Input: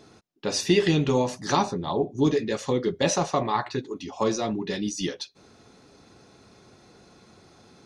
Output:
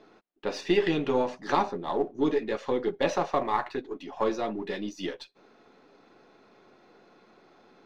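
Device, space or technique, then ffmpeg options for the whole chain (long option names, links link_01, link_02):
crystal radio: -af "highpass=280,lowpass=2700,aeval=exprs='if(lt(val(0),0),0.708*val(0),val(0))':channel_layout=same"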